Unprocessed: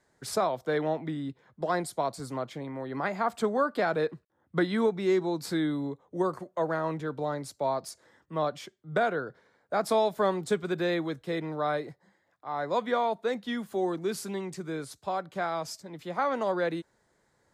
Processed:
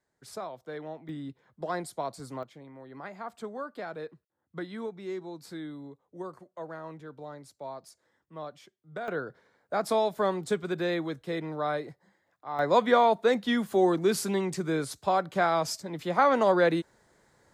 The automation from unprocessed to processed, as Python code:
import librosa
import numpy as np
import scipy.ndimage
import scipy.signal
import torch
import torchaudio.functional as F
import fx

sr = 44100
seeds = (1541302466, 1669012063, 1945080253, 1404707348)

y = fx.gain(x, sr, db=fx.steps((0.0, -11.0), (1.09, -4.0), (2.43, -11.0), (9.08, -1.0), (12.59, 6.0)))